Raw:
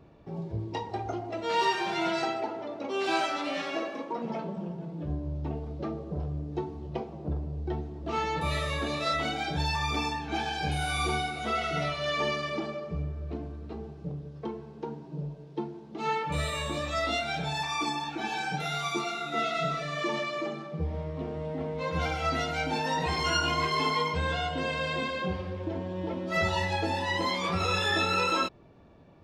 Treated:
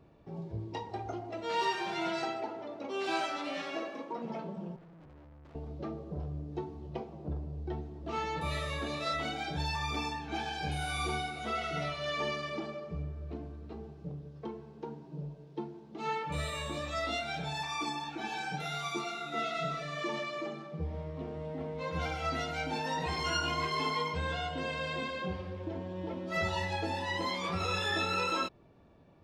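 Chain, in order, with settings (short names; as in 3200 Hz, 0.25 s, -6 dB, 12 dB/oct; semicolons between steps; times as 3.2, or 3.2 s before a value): 4.76–5.55 tube stage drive 48 dB, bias 0.6; gain -5 dB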